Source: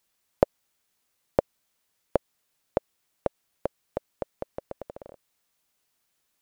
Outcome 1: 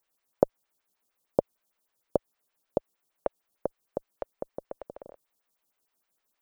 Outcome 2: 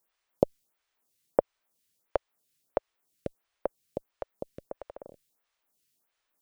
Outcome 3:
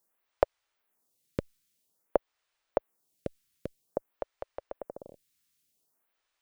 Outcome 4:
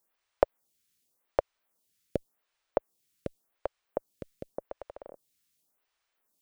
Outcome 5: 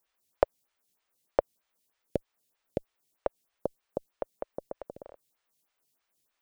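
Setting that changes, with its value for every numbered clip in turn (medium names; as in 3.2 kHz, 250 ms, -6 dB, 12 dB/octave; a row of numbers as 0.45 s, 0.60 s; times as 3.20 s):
lamp-driven phase shifter, rate: 6.5 Hz, 1.5 Hz, 0.51 Hz, 0.88 Hz, 3.2 Hz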